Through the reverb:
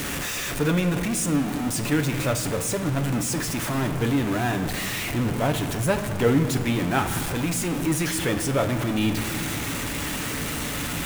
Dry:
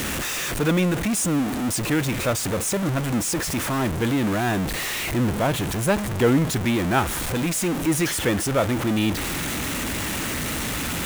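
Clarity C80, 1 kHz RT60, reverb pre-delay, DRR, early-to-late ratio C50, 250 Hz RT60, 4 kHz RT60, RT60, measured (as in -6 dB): 10.5 dB, 1.8 s, 7 ms, 5.0 dB, 9.0 dB, 2.7 s, 1.3 s, 1.8 s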